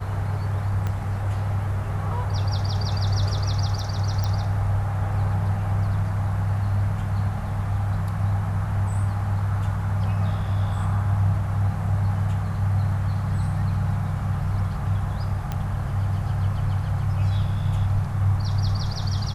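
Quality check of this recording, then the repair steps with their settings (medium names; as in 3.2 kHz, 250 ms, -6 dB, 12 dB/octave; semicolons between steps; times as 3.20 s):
0.87 s: pop -16 dBFS
4.24 s: pop
15.52 s: pop -15 dBFS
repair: de-click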